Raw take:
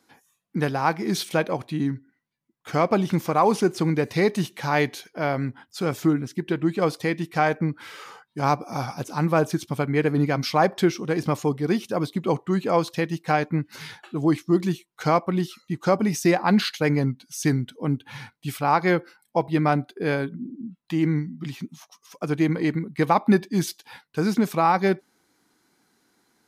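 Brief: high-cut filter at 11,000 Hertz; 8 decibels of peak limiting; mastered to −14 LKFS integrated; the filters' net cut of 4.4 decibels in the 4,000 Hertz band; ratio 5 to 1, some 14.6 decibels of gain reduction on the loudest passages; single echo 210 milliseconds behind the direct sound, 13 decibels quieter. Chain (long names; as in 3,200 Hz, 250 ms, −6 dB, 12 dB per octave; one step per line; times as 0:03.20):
low-pass filter 11,000 Hz
parametric band 4,000 Hz −5.5 dB
downward compressor 5 to 1, threshold −31 dBFS
brickwall limiter −26 dBFS
single-tap delay 210 ms −13 dB
level +23 dB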